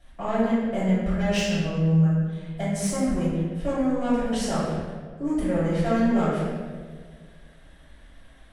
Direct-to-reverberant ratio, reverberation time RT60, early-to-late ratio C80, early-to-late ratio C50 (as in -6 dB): -11.5 dB, 1.7 s, 1.0 dB, -1.5 dB